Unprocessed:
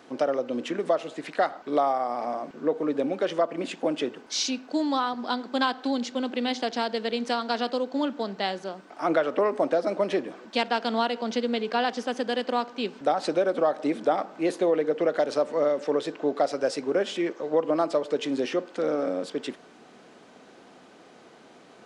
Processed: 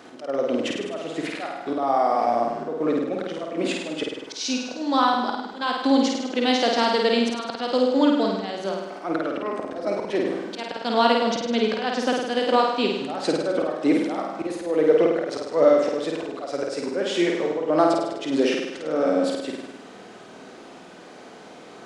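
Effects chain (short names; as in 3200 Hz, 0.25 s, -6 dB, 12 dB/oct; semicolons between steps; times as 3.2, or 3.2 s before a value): auto swell 0.264 s; flutter echo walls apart 8.8 m, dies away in 0.95 s; gain +5.5 dB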